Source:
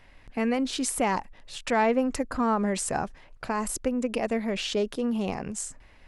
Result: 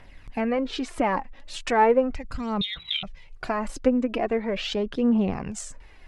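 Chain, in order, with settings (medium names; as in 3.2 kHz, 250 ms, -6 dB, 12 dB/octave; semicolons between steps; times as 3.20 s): 2.61–3.03 s: frequency inversion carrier 3.9 kHz; 2.14–3.34 s: time-frequency box 210–1900 Hz -10 dB; low-pass that closes with the level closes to 2 kHz, closed at -23.5 dBFS; phaser 0.39 Hz, delay 4 ms, feedback 47%; trim +2 dB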